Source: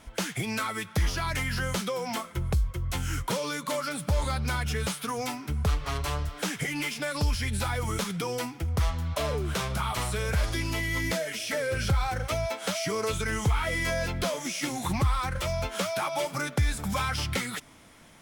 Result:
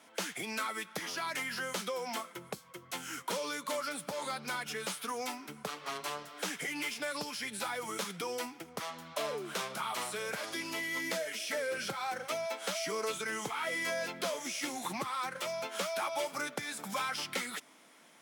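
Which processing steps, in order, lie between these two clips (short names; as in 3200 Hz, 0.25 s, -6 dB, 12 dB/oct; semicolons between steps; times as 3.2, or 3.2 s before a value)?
Bessel high-pass 300 Hz, order 6; gain -4.5 dB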